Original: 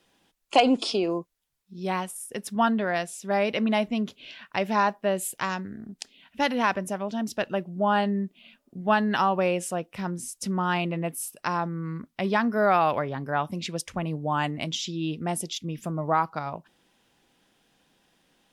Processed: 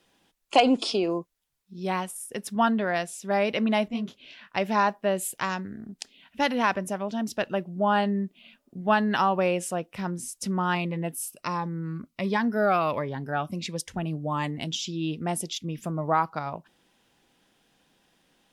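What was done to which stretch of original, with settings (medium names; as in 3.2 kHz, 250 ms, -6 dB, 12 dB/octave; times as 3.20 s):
3.88–4.56 s: detune thickener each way 58 cents
10.75–14.92 s: Shepard-style phaser falling 1.4 Hz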